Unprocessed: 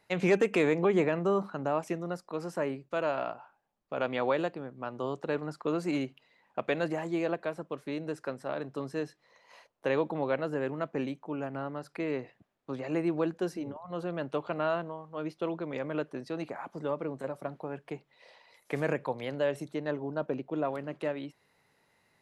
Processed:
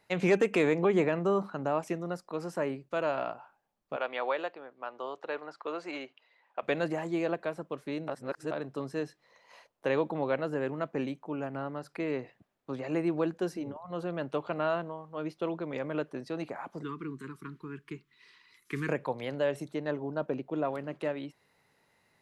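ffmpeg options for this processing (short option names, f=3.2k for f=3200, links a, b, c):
-filter_complex "[0:a]asettb=1/sr,asplit=3[a][b][c];[a]atrim=end=3.964[d];[b]atrim=start=3.96:end=6.63,asetpts=PTS-STARTPTS,afade=t=in:d=0.004:c=qsin,afade=t=out:st=2.666:d=0.004:c=qsin,highpass=560,lowpass=4.4k[e];[c]atrim=start=6.626[f];[d][e]acrossfade=d=0.004:c1=hsin:c2=qsin[g];[g][f]acrossfade=d=0.004:c1=qsin:c2=hsin,asettb=1/sr,asplit=3[h][i][j];[h]atrim=end=16.834[k];[i]atrim=start=16.83:end=18.89,asetpts=PTS-STARTPTS,afade=t=in:d=0.004:c=qsin,afade=t=out:st=2.056:d=0.004:c=qsin,asuperstop=centerf=650:order=8:qfactor=1[l];[j]atrim=start=18.886[m];[k][l]acrossfade=d=0.004:c1=hsin:c2=qsin[n];[n][m]acrossfade=d=0.004:c1=qsin:c2=hsin,asplit=3[o][p][q];[o]atrim=end=8.082[r];[p]atrim=start=8.078:end=8.512,asetpts=PTS-STARTPTS,areverse[s];[q]atrim=start=8.508[t];[r][s]acrossfade=d=0.004:c1=hsin:c2=hsin[u];[u][t]acrossfade=d=0.004:c1=hsin:c2=hsin"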